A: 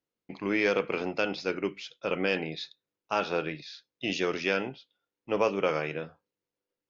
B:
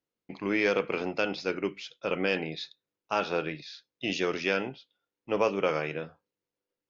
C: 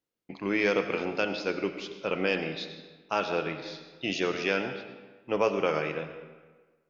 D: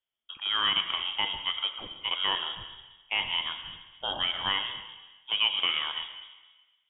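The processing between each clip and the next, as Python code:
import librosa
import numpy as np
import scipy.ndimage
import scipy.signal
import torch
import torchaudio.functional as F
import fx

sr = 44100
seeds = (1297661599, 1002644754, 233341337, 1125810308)

y1 = x
y2 = fx.rev_freeverb(y1, sr, rt60_s=1.4, hf_ratio=0.7, predelay_ms=50, drr_db=8.5)
y3 = fx.freq_invert(y2, sr, carrier_hz=3500)
y3 = y3 * librosa.db_to_amplitude(-1.0)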